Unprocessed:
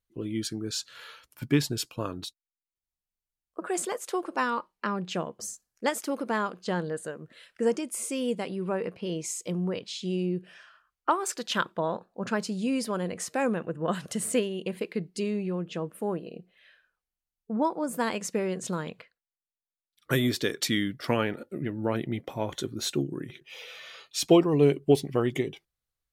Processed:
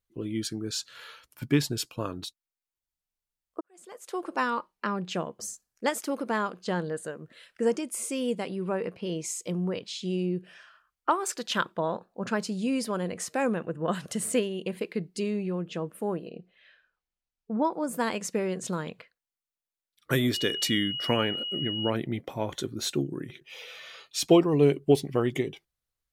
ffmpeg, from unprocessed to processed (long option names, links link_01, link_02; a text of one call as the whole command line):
ffmpeg -i in.wav -filter_complex "[0:a]asettb=1/sr,asplit=3[link_01][link_02][link_03];[link_01]atrim=end=16.294[link_04];[link_02]atrim=start=16.29:end=17.73,asetpts=PTS-STARTPTS,afade=type=in:duration=0.004:curve=qsin,afade=type=out:start_time=1.436:duration=0.004:curve=qsin,lowpass=5700[link_05];[link_03]atrim=start=17.726[link_06];[link_04][link_05]acrossfade=duration=0.004:curve1=hsin:curve2=qsin[link_07];[link_07][link_06]acrossfade=duration=0.004:curve1=qsin:curve2=hsin,asettb=1/sr,asplit=3[link_08][link_09][link_10];[link_08]atrim=end=20.344[link_11];[link_09]atrim=start=20.34:end=21.9,asetpts=PTS-STARTPTS,afade=type=in:duration=0.004:curve=qsin,afade=type=out:start_time=1.556:duration=0.004:curve=qsin,aeval=exprs='val(0)+0.0282*sin(2*PI*2900*n/s)':channel_layout=same[link_12];[link_10]atrim=start=21.896[link_13];[link_11][link_12]acrossfade=duration=0.004:curve1=hsin:curve2=qsin[link_14];[link_14][link_13]acrossfade=duration=0.004:curve1=qsin:curve2=hsin,asplit=2[link_15][link_16];[link_15]atrim=end=3.61,asetpts=PTS-STARTPTS,afade=type=out:start_time=3.606:duration=0.004:curve=hsin[link_17];[link_16]atrim=start=3.61,asetpts=PTS-STARTPTS,afade=type=in:duration=0.67:curve=qua[link_18];[link_17][link_18]concat=n=2:v=0:a=1" out.wav